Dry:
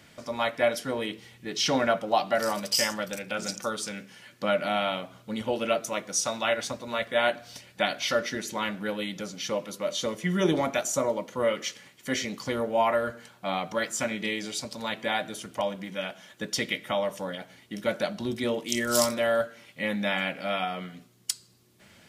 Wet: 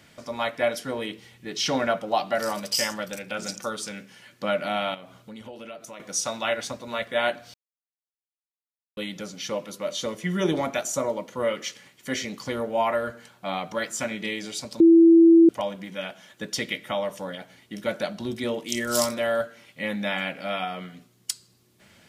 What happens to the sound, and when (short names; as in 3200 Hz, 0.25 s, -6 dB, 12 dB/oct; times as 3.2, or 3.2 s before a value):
4.94–6 compressor 4:1, threshold -39 dBFS
7.54–8.97 mute
14.8–15.49 bleep 332 Hz -10 dBFS